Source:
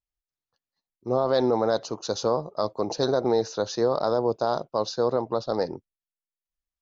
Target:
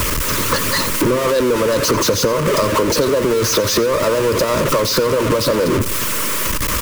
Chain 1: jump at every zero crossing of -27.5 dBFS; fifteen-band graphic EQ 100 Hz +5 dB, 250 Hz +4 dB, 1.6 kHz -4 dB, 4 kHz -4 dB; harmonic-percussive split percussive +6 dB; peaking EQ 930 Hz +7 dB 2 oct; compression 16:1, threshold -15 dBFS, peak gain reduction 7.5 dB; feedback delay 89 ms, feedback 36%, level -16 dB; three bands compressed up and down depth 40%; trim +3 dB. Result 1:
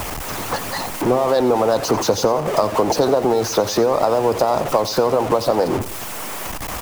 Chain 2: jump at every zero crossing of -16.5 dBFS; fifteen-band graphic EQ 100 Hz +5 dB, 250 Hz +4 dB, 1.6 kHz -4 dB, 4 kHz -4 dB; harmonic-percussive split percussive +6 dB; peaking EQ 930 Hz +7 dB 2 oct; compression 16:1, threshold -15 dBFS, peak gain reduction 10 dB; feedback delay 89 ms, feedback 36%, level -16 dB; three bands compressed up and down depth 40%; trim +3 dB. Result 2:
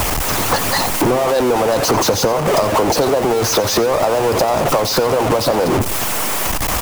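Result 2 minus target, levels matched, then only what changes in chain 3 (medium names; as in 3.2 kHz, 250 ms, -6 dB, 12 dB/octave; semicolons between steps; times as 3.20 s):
1 kHz band +3.5 dB
add after harmonic-percussive split: Butterworth band-stop 760 Hz, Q 2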